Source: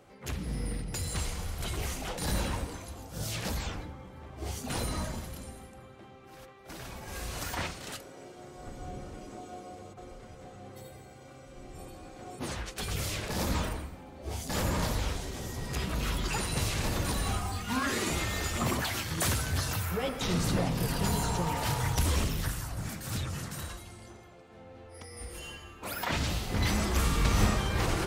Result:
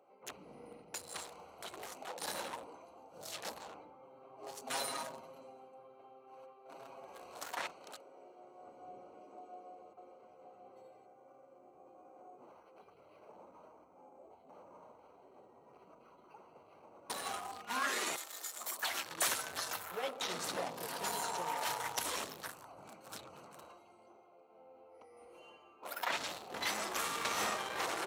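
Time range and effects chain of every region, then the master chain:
0:04.02–0:07.07: mains-hum notches 50/100/150/200/250/300/350/400/450 Hz + comb filter 7.4 ms, depth 94%
0:11.06–0:17.10: parametric band 2,700 Hz −6 dB 0.81 octaves + downward compressor 4 to 1, threshold −43 dBFS + bad sample-rate conversion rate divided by 6×, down filtered, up hold
0:18.16–0:18.83: RIAA equalisation recording + notch filter 2,700 Hz, Q 6 + tuned comb filter 160 Hz, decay 1.2 s, mix 70%
whole clip: adaptive Wiener filter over 25 samples; high-pass filter 620 Hz 12 dB per octave; notch filter 4,800 Hz, Q 21; level −1 dB

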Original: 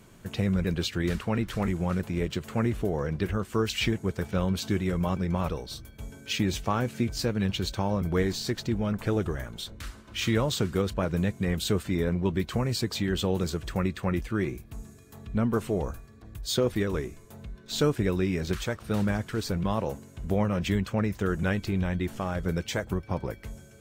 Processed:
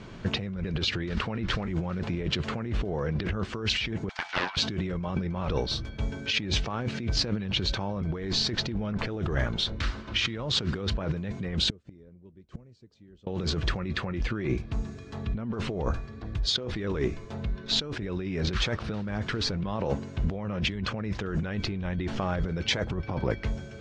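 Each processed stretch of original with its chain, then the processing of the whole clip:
0:04.09–0:04.57: Chebyshev high-pass filter 720 Hz, order 6 + highs frequency-modulated by the lows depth 0.48 ms
0:11.69–0:13.27: flat-topped bell 1,900 Hz −9.5 dB 3 octaves + gate with flip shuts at −28 dBFS, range −35 dB
whole clip: low-pass filter 5,100 Hz 24 dB per octave; compressor whose output falls as the input rises −34 dBFS, ratio −1; level +4.5 dB

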